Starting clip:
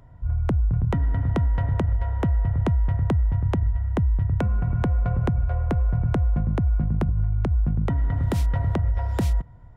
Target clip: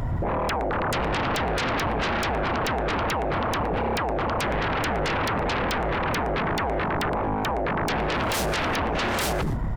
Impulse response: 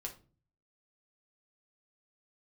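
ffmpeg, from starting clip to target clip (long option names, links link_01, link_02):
-af "aecho=1:1:119|238:0.1|0.025,alimiter=level_in=0.5dB:limit=-24dB:level=0:latency=1:release=22,volume=-0.5dB,aeval=exprs='0.0596*sin(PI/2*7.94*val(0)/0.0596)':channel_layout=same,volume=2.5dB"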